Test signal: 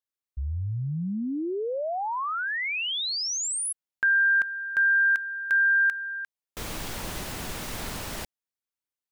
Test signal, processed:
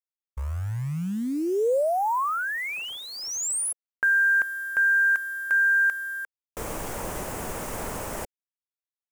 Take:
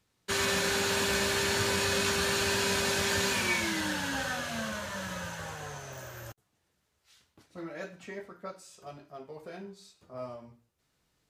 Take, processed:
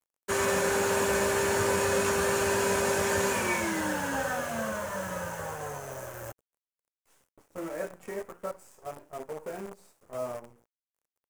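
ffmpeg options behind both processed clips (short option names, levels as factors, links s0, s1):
-af "acrusher=bits=8:dc=4:mix=0:aa=0.000001,equalizer=f=500:t=o:w=1:g=7,equalizer=f=1000:t=o:w=1:g=4,equalizer=f=4000:t=o:w=1:g=-11,equalizer=f=8000:t=o:w=1:g=4"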